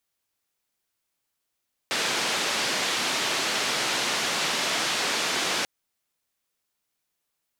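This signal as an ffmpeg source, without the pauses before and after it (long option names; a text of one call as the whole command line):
ffmpeg -f lavfi -i "anoisesrc=color=white:duration=3.74:sample_rate=44100:seed=1,highpass=frequency=200,lowpass=frequency=4800,volume=-15.2dB" out.wav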